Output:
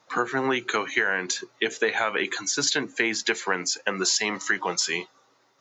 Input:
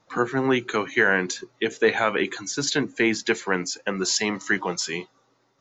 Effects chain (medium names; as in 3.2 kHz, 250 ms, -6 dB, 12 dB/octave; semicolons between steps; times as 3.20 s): high-pass 74 Hz; bass shelf 360 Hz -11.5 dB; compression 6:1, threshold -25 dBFS, peak gain reduction 9.5 dB; trim +5 dB